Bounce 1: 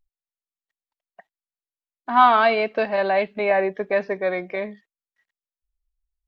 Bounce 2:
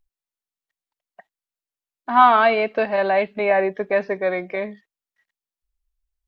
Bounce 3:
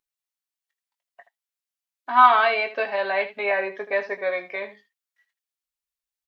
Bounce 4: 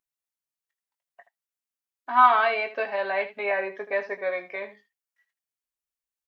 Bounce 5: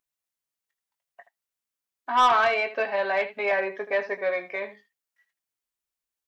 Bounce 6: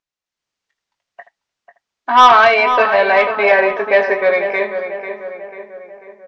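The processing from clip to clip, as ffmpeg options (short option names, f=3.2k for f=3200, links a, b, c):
-filter_complex "[0:a]acrossover=split=4100[a][b];[b]acompressor=threshold=-54dB:ratio=4:attack=1:release=60[c];[a][c]amix=inputs=2:normalize=0,volume=1.5dB"
-filter_complex "[0:a]highpass=f=1.2k:p=1,aecho=1:1:7.2:0.39,asplit=2[a][b];[b]aecho=0:1:20|78:0.398|0.211[c];[a][c]amix=inputs=2:normalize=0"
-af "equalizer=f=3.8k:t=o:w=0.93:g=-4,volume=-2.5dB"
-af "asoftclip=type=tanh:threshold=-16dB,volume=2.5dB"
-filter_complex "[0:a]lowpass=f=6.3k:w=0.5412,lowpass=f=6.3k:w=1.3066,dynaudnorm=f=240:g=3:m=10dB,asplit=2[a][b];[b]adelay=493,lowpass=f=2.3k:p=1,volume=-8dB,asplit=2[c][d];[d]adelay=493,lowpass=f=2.3k:p=1,volume=0.53,asplit=2[e][f];[f]adelay=493,lowpass=f=2.3k:p=1,volume=0.53,asplit=2[g][h];[h]adelay=493,lowpass=f=2.3k:p=1,volume=0.53,asplit=2[i][j];[j]adelay=493,lowpass=f=2.3k:p=1,volume=0.53,asplit=2[k][l];[l]adelay=493,lowpass=f=2.3k:p=1,volume=0.53[m];[a][c][e][g][i][k][m]amix=inputs=7:normalize=0,volume=2.5dB"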